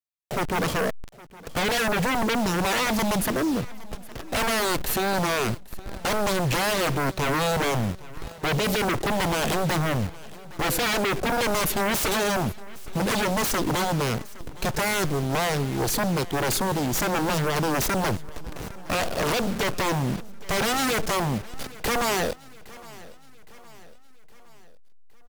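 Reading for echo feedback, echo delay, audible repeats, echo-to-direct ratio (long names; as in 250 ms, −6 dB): 51%, 814 ms, 3, −19.0 dB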